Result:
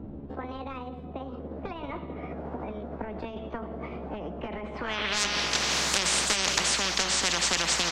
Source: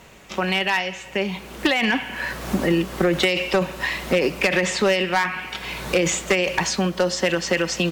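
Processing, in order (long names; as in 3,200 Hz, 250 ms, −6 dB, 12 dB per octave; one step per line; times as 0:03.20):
pitch glide at a constant tempo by +6 semitones ending unshifted
low-pass filter sweep 240 Hz → 5,300 Hz, 0:04.71–0:05.22
every bin compressed towards the loudest bin 10 to 1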